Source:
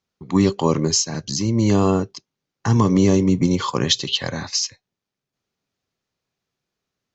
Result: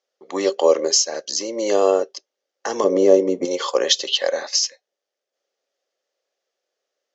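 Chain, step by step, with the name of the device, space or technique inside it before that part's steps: phone speaker on a table (speaker cabinet 430–7100 Hz, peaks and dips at 550 Hz +10 dB, 990 Hz -9 dB, 1400 Hz -4 dB, 2400 Hz -6 dB, 4000 Hz -5 dB); 2.84–3.45 tilt shelf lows +8 dB, about 780 Hz; gain +4 dB

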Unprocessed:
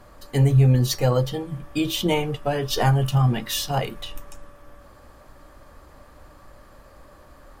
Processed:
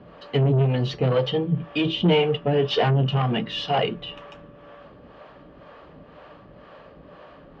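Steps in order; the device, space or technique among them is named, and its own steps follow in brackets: guitar amplifier with harmonic tremolo (harmonic tremolo 2 Hz, depth 70%, crossover 430 Hz; soft clip -24 dBFS, distortion -7 dB; speaker cabinet 77–3700 Hz, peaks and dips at 80 Hz -8 dB, 170 Hz +10 dB, 260 Hz +3 dB, 440 Hz +8 dB, 670 Hz +4 dB, 2900 Hz +8 dB); gain +5 dB

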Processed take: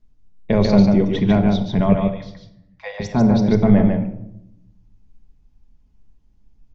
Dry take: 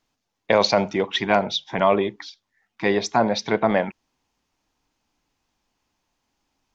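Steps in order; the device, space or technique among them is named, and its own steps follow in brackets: 1.93–3 Chebyshev high-pass 490 Hz, order 10; tilt -4 dB/oct; smiley-face EQ (low shelf 170 Hz +9 dB; bell 910 Hz -6 dB 2 oct; high shelf 5800 Hz +7.5 dB); echo 0.146 s -4 dB; shoebox room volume 2300 m³, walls furnished, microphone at 1.4 m; gain -3.5 dB

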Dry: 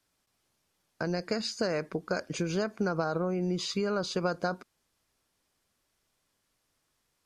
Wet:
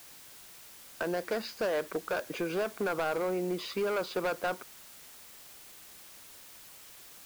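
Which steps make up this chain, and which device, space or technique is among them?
aircraft radio (BPF 360–2500 Hz; hard clip -30 dBFS, distortion -10 dB; white noise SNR 16 dB); gain +4 dB

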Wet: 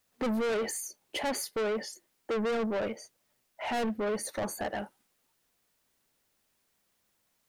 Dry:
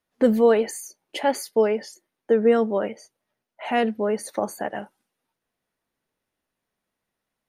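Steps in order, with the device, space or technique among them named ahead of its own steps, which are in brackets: open-reel tape (soft clip -28 dBFS, distortion -4 dB; bell 82 Hz +3.5 dB; white noise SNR 41 dB)

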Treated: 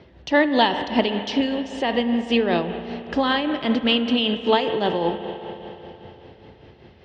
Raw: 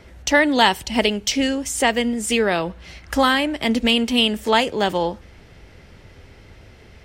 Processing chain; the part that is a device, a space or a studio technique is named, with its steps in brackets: 3.47–4.14 bell 1400 Hz +14 dB 0.26 oct; combo amplifier with spring reverb and tremolo (spring tank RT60 3.7 s, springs 34/59 ms, chirp 45 ms, DRR 7.5 dB; tremolo 5.1 Hz, depth 47%; speaker cabinet 89–4100 Hz, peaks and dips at 150 Hz +3 dB, 340 Hz +4 dB, 1400 Hz -7 dB, 2200 Hz -7 dB)

